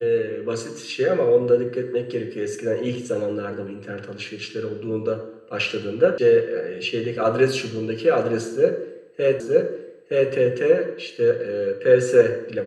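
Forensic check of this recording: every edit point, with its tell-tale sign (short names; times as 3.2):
6.18 sound cut off
9.4 repeat of the last 0.92 s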